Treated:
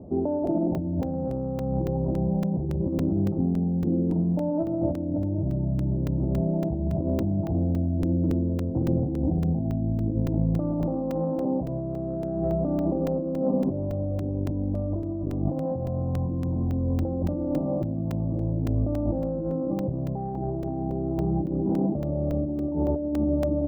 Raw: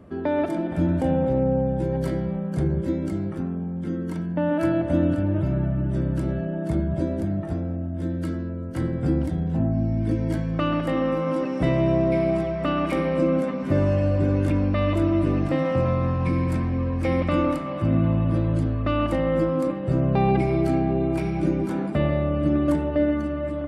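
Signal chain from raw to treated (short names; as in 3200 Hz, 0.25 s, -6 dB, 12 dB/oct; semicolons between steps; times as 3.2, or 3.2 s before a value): elliptic low-pass 820 Hz, stop band 60 dB; negative-ratio compressor -27 dBFS, ratio -1; added harmonics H 8 -41 dB, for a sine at -2 dBFS; phaser 0.22 Hz, delay 1.2 ms, feedback 21%; crackling interface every 0.28 s, samples 128, zero, from 0.47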